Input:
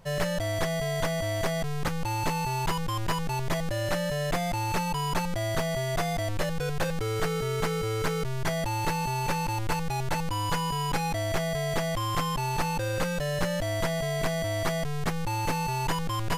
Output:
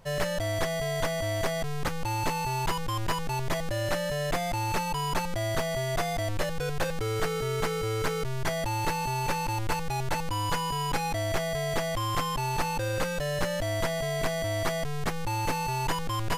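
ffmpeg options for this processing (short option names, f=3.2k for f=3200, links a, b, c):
-af "equalizer=f=170:w=4:g=-5"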